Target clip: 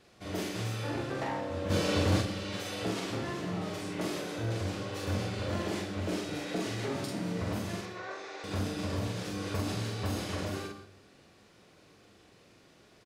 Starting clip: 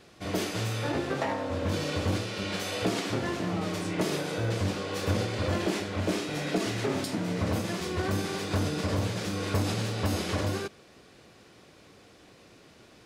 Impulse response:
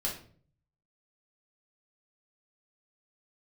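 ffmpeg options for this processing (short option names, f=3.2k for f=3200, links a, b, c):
-filter_complex "[0:a]asettb=1/sr,asplit=3[a][b][c];[a]atrim=end=1.704[d];[b]atrim=start=1.7:end=2.21,asetpts=PTS-STARTPTS,afade=t=in:d=0.004:c=qsin,afade=t=out:st=0.506:d=0.004:c=qsin,acontrast=78[e];[c]atrim=start=2.206[f];[d][e]acrossfade=d=0.004:c1=hsin:c2=qsin[g];[g][f]acrossfade=d=0.004:c1=qsin:c2=hsin,asettb=1/sr,asplit=3[h][i][j];[h]atrim=end=7.814[k];[i]atrim=start=7.81:end=8.44,asetpts=PTS-STARTPTS,afade=t=in:d=0.004:c=qsin,afade=t=out:st=0.626:d=0.004:c=qsin,highpass=f=470:w=0.5412,highpass=f=470:w=1.3066,equalizer=f=860:t=q:w=4:g=-3,equalizer=f=3.1k:t=q:w=4:g=-9,equalizer=f=4.8k:t=q:w=4:g=-8,lowpass=f=5.5k:w=0.5412,lowpass=f=5.5k:w=1.3066[l];[j]atrim=start=8.436[m];[k][l]acrossfade=d=0.004:c1=hsin:c2=qsin[n];[n][m]acrossfade=d=0.004:c1=qsin:c2=hsin,asplit=2[o][p];[p]adelay=44,volume=-3dB[q];[o][q]amix=inputs=2:normalize=0,asplit=2[r][s];[1:a]atrim=start_sample=2205,adelay=110[t];[s][t]afir=irnorm=-1:irlink=0,volume=-15dB[u];[r][u]amix=inputs=2:normalize=0,volume=-7dB"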